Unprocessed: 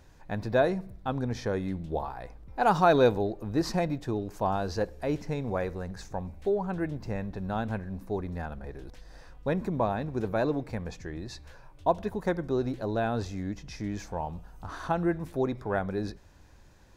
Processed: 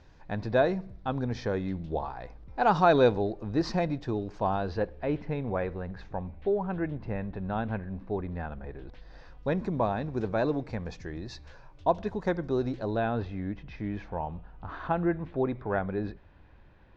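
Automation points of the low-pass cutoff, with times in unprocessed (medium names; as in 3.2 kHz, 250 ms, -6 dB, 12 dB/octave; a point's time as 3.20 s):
low-pass 24 dB/octave
4.23 s 5.4 kHz
4.89 s 3.4 kHz
8.73 s 3.4 kHz
9.47 s 5.9 kHz
12.77 s 5.9 kHz
13.19 s 3.2 kHz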